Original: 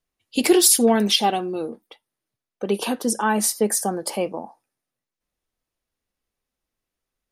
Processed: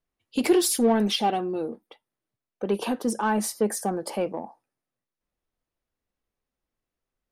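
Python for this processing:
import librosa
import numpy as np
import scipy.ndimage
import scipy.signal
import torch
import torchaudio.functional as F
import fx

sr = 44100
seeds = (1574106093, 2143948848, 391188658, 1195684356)

p1 = fx.high_shelf(x, sr, hz=2700.0, db=-9.0)
p2 = 10.0 ** (-22.5 / 20.0) * np.tanh(p1 / 10.0 ** (-22.5 / 20.0))
p3 = p1 + (p2 * 10.0 ** (-4.0 / 20.0))
y = p3 * 10.0 ** (-5.0 / 20.0)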